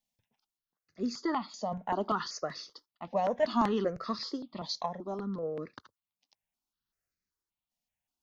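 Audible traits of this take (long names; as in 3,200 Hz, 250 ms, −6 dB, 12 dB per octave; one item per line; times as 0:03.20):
sample-and-hold tremolo
notches that jump at a steady rate 5.2 Hz 370–3,100 Hz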